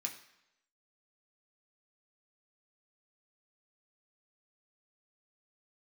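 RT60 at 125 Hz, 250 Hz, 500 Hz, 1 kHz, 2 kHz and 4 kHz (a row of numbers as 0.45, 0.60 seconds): 0.75, 0.80, 0.85, 0.85, 0.85, 0.80 seconds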